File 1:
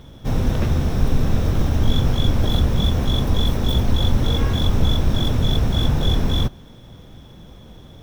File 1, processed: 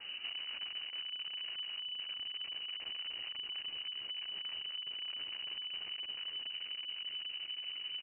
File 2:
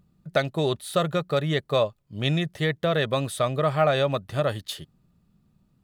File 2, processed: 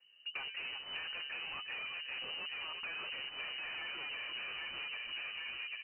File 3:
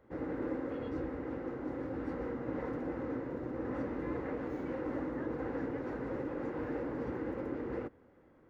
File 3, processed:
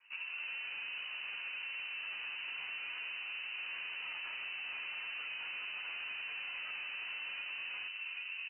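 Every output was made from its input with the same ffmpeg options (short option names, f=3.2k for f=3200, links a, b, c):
-filter_complex "[0:a]flanger=delay=9.2:depth=5.3:regen=5:speed=1.4:shape=sinusoidal,aemphasis=mode=production:type=50kf,bandreject=f=203.2:t=h:w=4,bandreject=f=406.4:t=h:w=4,bandreject=f=609.6:t=h:w=4,bandreject=f=812.8:t=h:w=4,bandreject=f=1.016k:t=h:w=4,bandreject=f=1.2192k:t=h:w=4,bandreject=f=1.4224k:t=h:w=4,asplit=2[a][b];[b]aecho=0:1:355|710:0.126|0.0277[c];[a][c]amix=inputs=2:normalize=0,flanger=delay=2.8:depth=1.8:regen=61:speed=0.44:shape=sinusoidal,dynaudnorm=f=300:g=3:m=14dB,adynamicequalizer=threshold=0.0178:dfrequency=270:dqfactor=1.8:tfrequency=270:tqfactor=1.8:attack=5:release=100:ratio=0.375:range=2.5:mode=cutabove:tftype=bell,asplit=2[d][e];[e]adelay=793,lowpass=f=1.2k:p=1,volume=-8dB,asplit=2[f][g];[g]adelay=793,lowpass=f=1.2k:p=1,volume=0.38,asplit=2[h][i];[i]adelay=793,lowpass=f=1.2k:p=1,volume=0.38,asplit=2[j][k];[k]adelay=793,lowpass=f=1.2k:p=1,volume=0.38[l];[f][h][j][l]amix=inputs=4:normalize=0[m];[d][m]amix=inputs=2:normalize=0,alimiter=limit=-8dB:level=0:latency=1:release=393,aeval=exprs='(tanh(56.2*val(0)+0.45)-tanh(0.45))/56.2':c=same,lowpass=f=2.6k:t=q:w=0.5098,lowpass=f=2.6k:t=q:w=0.6013,lowpass=f=2.6k:t=q:w=0.9,lowpass=f=2.6k:t=q:w=2.563,afreqshift=-3000,acompressor=threshold=-48dB:ratio=10,volume=8dB"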